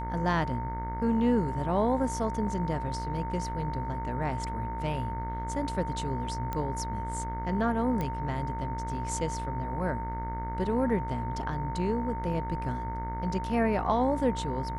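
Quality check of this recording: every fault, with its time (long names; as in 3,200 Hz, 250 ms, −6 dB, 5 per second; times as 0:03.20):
mains buzz 60 Hz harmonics 37 −36 dBFS
whistle 910 Hz −35 dBFS
0:02.47: drop-out 2.2 ms
0:06.53: click −19 dBFS
0:08.01: click −19 dBFS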